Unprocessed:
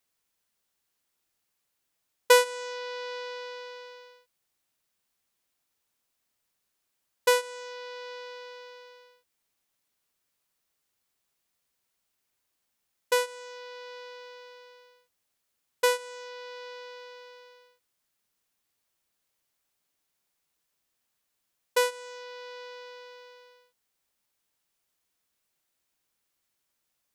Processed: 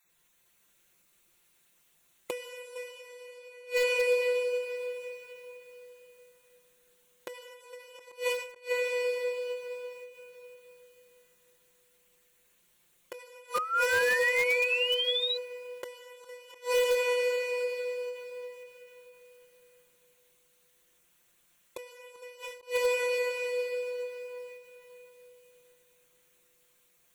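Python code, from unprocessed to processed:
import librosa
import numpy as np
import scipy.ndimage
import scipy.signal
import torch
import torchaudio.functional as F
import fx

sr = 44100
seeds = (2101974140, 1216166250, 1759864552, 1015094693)

p1 = fx.spec_dropout(x, sr, seeds[0], share_pct=20)
p2 = fx.graphic_eq_31(p1, sr, hz=(800, 1250, 5000), db=(-9, -4, -11))
p3 = p2 + 10.0 ** (-7.0 / 20.0) * np.pad(p2, (int(454 * sr / 1000.0), 0))[:len(p2)]
p4 = fx.rev_plate(p3, sr, seeds[1], rt60_s=4.0, hf_ratio=0.9, predelay_ms=0, drr_db=-1.0)
p5 = fx.gate_flip(p4, sr, shuts_db=-26.0, range_db=-28)
p6 = fx.spec_paint(p5, sr, seeds[2], shape='rise', start_s=13.54, length_s=1.83, low_hz=1200.0, high_hz=4000.0, level_db=-39.0)
p7 = fx.high_shelf(p6, sr, hz=10000.0, db=-2.0)
p8 = p7 + 0.7 * np.pad(p7, (int(5.7 * sr / 1000.0), 0))[:len(p7)]
p9 = (np.mod(10.0 ** (27.5 / 20.0) * p8 + 1.0, 2.0) - 1.0) / 10.0 ** (27.5 / 20.0)
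p10 = p8 + (p9 * 10.0 ** (-11.0 / 20.0))
p11 = fx.end_taper(p10, sr, db_per_s=100.0)
y = p11 * 10.0 ** (6.5 / 20.0)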